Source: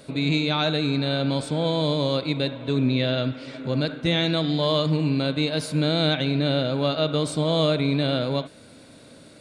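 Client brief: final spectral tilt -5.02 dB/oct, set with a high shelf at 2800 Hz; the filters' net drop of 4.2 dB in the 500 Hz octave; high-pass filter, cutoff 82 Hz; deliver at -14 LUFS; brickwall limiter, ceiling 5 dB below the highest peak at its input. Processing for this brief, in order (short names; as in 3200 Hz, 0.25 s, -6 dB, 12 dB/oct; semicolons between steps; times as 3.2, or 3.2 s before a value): HPF 82 Hz; bell 500 Hz -5 dB; high shelf 2800 Hz -3.5 dB; gain +13 dB; limiter -3.5 dBFS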